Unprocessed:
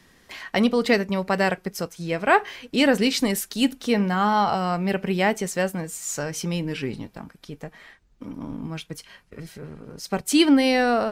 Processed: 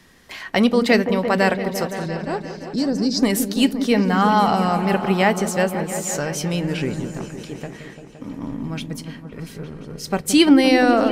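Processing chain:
0:02.06–0:03.23: drawn EQ curve 170 Hz 0 dB, 2,900 Hz −26 dB, 5,000 Hz +3 dB, 11,000 Hz −19 dB
on a send: echo whose low-pass opens from repeat to repeat 172 ms, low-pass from 400 Hz, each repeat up 1 octave, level −6 dB
on the sum: level +3.5 dB

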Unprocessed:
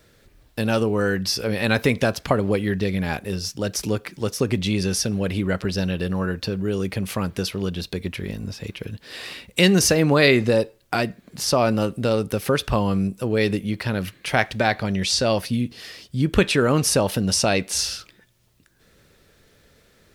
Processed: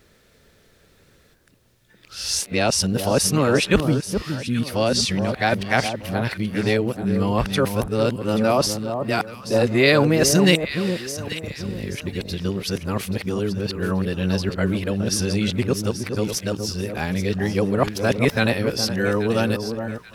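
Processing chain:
played backwards from end to start
on a send: delay that swaps between a low-pass and a high-pass 416 ms, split 1,200 Hz, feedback 56%, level −7 dB

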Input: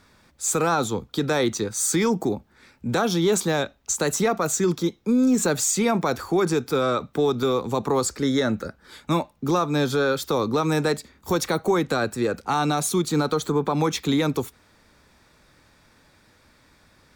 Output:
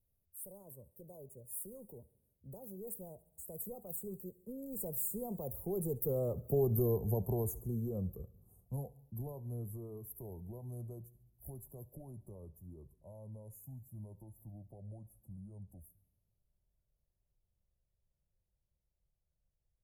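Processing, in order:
gliding playback speed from 112% → 61%
source passing by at 0:06.68, 23 m/s, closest 12 metres
inverse Chebyshev band-stop filter 1,600–4,900 Hz, stop band 70 dB
guitar amp tone stack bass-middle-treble 10-0-10
feedback echo with a high-pass in the loop 70 ms, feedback 67%, high-pass 480 Hz, level −21.5 dB
on a send at −18.5 dB: convolution reverb RT60 0.90 s, pre-delay 3 ms
on the sum: level +13.5 dB

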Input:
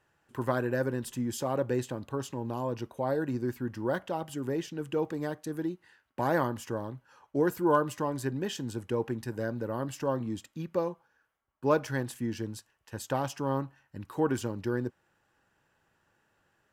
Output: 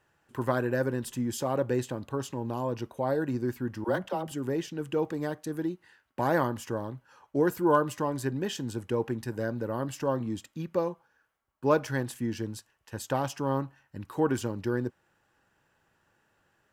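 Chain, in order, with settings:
0:03.84–0:04.32: all-pass dispersion lows, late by 47 ms, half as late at 380 Hz
level +1.5 dB

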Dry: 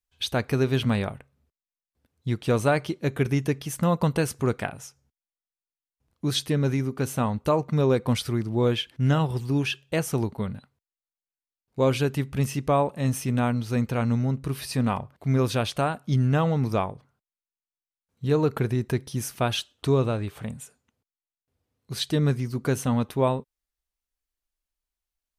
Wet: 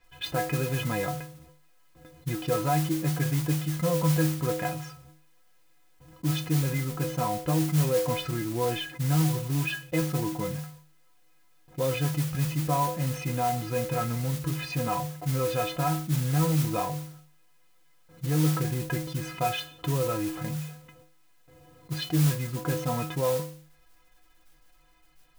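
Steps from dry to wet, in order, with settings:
low-pass filter 2,300 Hz 12 dB per octave
stiff-string resonator 150 Hz, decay 0.35 s, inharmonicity 0.03
noise that follows the level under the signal 13 dB
envelope flattener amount 50%
level +4 dB

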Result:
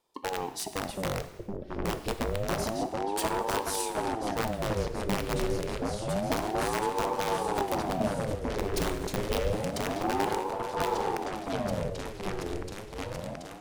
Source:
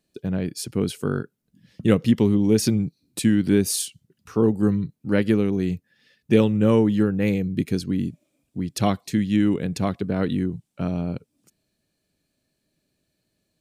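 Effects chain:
downward compressor 8 to 1, threshold −26 dBFS, peak gain reduction 15 dB
wrap-around overflow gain 21 dB
on a send: echo whose low-pass opens from repeat to repeat 729 ms, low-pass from 400 Hz, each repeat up 2 octaves, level 0 dB
on the sum: reverb whose tail is shaped and stops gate 370 ms falling, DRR 9 dB
ring modulator whose carrier an LFO sweeps 430 Hz, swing 60%, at 0.28 Hz

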